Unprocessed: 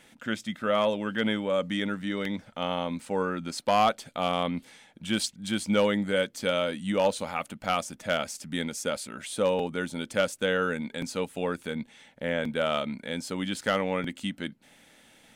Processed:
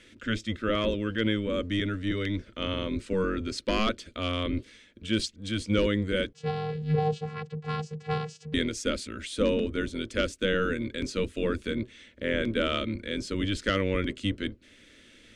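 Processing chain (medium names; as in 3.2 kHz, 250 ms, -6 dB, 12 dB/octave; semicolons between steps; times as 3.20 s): octave divider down 1 oct, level +4 dB; low-pass 5.8 kHz 12 dB/octave; static phaser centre 330 Hz, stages 4; 6.33–8.54 s: vocoder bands 8, square 153 Hz; gain riding within 4 dB 2 s; trim +2 dB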